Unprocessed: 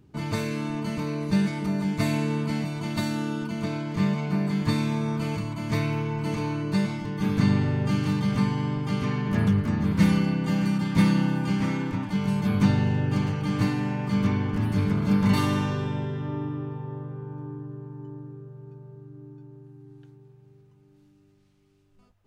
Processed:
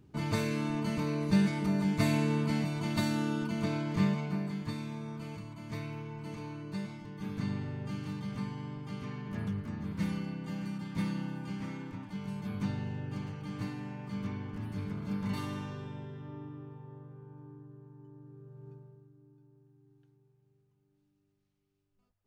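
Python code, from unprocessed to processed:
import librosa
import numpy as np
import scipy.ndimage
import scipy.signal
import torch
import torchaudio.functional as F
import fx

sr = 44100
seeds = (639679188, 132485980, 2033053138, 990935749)

y = fx.gain(x, sr, db=fx.line((3.97, -3.0), (4.73, -13.5), (18.13, -13.5), (18.7, -5.0), (19.15, -16.0)))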